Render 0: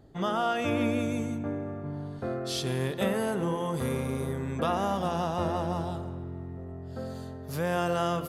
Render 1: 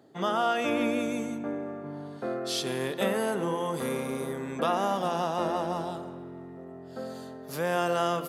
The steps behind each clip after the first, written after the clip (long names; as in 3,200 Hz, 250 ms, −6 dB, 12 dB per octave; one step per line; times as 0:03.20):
Bessel high-pass filter 240 Hz, order 4
level +2 dB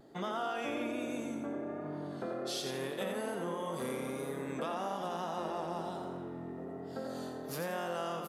downward compressor 3 to 1, threshold −38 dBFS, peak gain reduction 12 dB
pitch vibrato 1.2 Hz 39 cents
echo with shifted repeats 86 ms, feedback 35%, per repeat +38 Hz, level −6 dB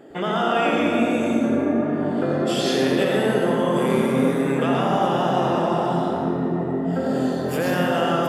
convolution reverb RT60 3.5 s, pre-delay 105 ms, DRR 1 dB
level +5.5 dB